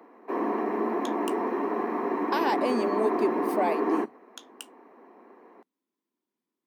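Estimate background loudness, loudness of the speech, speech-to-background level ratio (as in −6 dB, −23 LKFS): −29.0 LKFS, −30.0 LKFS, −1.0 dB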